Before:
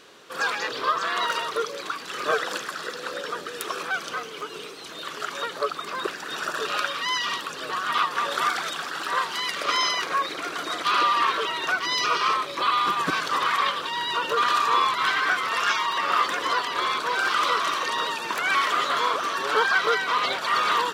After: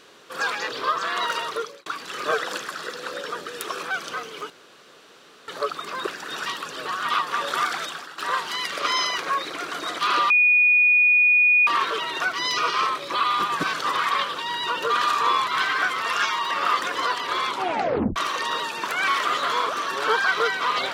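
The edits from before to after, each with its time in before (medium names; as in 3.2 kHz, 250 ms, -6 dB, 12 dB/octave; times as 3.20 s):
1.52–1.86 s: fade out
4.50–5.48 s: room tone
6.46–7.30 s: delete
8.66–9.02 s: fade out, to -14 dB
11.14 s: add tone 2.46 kHz -13.5 dBFS 1.37 s
16.95 s: tape stop 0.68 s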